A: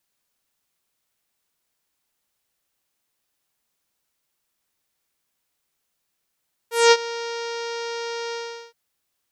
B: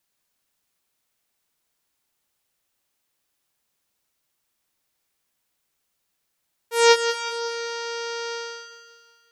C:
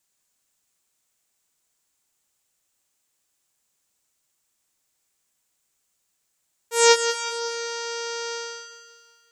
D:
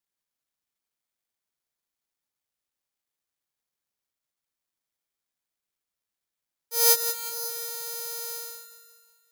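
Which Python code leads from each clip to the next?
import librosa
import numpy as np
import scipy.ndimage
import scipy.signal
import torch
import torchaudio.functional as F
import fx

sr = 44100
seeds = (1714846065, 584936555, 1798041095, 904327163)

y1 = fx.echo_feedback(x, sr, ms=183, feedback_pct=52, wet_db=-9)
y2 = fx.peak_eq(y1, sr, hz=7400.0, db=10.0, octaves=0.61)
y2 = y2 * 10.0 ** (-1.0 / 20.0)
y3 = (np.kron(scipy.signal.resample_poly(y2, 1, 8), np.eye(8)[0]) * 8)[:len(y2)]
y3 = y3 * 10.0 ** (-11.5 / 20.0)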